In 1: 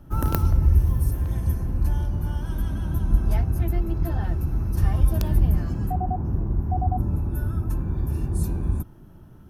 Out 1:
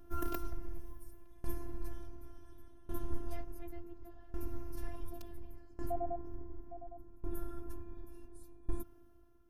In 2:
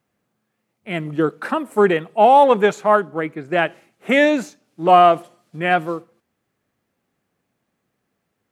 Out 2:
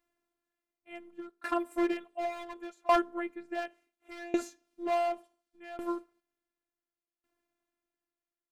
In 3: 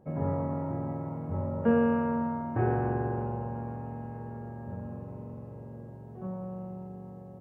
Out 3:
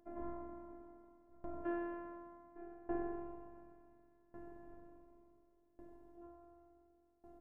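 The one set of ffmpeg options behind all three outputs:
-af "volume=11.5dB,asoftclip=hard,volume=-11.5dB,afftfilt=real='hypot(re,im)*cos(PI*b)':imag='0':win_size=512:overlap=0.75,aeval=exprs='val(0)*pow(10,-22*if(lt(mod(0.69*n/s,1),2*abs(0.69)/1000),1-mod(0.69*n/s,1)/(2*abs(0.69)/1000),(mod(0.69*n/s,1)-2*abs(0.69)/1000)/(1-2*abs(0.69)/1000))/20)':c=same,volume=-3.5dB"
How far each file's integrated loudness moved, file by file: -22.0, -16.5, -15.5 LU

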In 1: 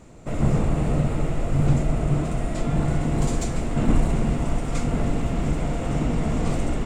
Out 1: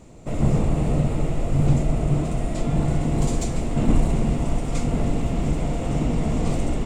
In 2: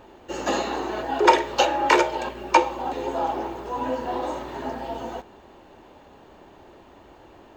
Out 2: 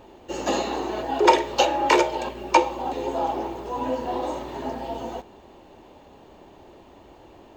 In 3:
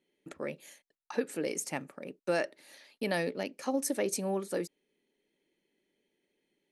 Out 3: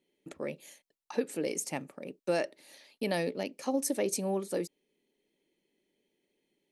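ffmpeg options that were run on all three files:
-af "equalizer=f=1.5k:t=o:w=0.83:g=-6,volume=1dB"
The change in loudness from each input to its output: +1.0, 0.0, +0.5 LU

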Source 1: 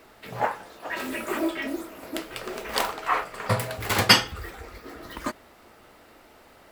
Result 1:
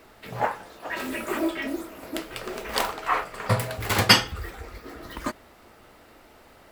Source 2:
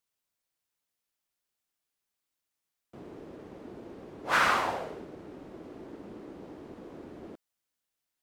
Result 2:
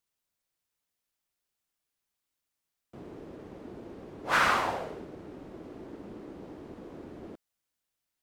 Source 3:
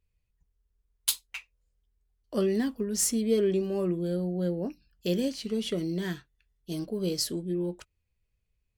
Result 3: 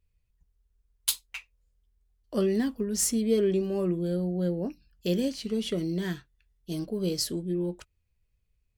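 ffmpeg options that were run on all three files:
-af "lowshelf=f=130:g=4.5"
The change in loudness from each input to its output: 0.0, 0.0, +0.5 LU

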